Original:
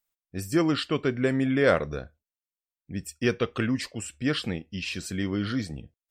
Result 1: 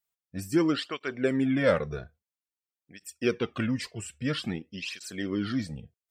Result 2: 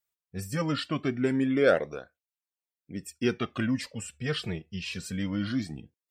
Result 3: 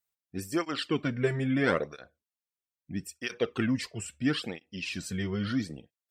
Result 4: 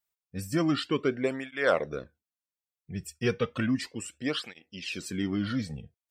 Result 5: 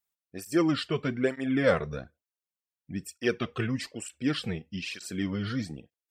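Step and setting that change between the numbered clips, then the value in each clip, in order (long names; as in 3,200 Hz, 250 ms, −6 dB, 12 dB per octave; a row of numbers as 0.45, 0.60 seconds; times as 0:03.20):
through-zero flanger with one copy inverted, nulls at: 0.5, 0.22, 0.76, 0.33, 1.1 Hertz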